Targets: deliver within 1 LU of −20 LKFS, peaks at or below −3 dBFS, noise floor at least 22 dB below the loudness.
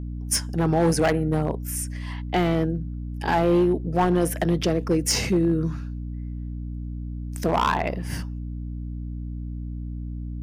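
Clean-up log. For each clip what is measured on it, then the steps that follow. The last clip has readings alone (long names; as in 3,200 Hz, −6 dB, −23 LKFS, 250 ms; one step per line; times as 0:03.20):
share of clipped samples 1.3%; peaks flattened at −14.5 dBFS; mains hum 60 Hz; hum harmonics up to 300 Hz; level of the hum −29 dBFS; integrated loudness −25.0 LKFS; sample peak −14.5 dBFS; target loudness −20.0 LKFS
→ clipped peaks rebuilt −14.5 dBFS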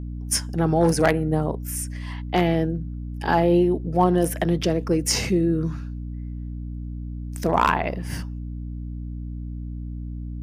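share of clipped samples 0.0%; mains hum 60 Hz; hum harmonics up to 300 Hz; level of the hum −29 dBFS
→ hum removal 60 Hz, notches 5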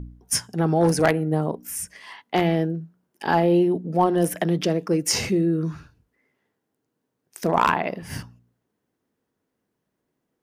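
mains hum none found; integrated loudness −22.5 LKFS; sample peak −4.5 dBFS; target loudness −20.0 LKFS
→ level +2.5 dB
brickwall limiter −3 dBFS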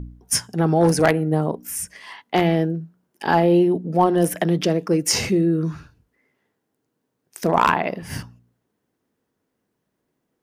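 integrated loudness −20.0 LKFS; sample peak −3.0 dBFS; background noise floor −76 dBFS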